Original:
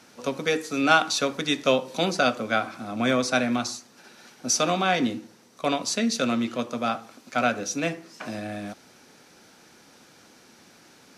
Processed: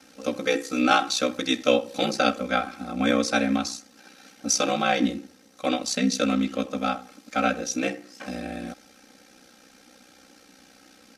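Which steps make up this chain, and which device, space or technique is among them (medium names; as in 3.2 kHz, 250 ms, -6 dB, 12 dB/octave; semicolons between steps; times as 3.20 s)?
band-stop 1 kHz, Q 5.3; ring-modulated robot voice (ring modulator 31 Hz; comb 3.8 ms, depth 75%); trim +1 dB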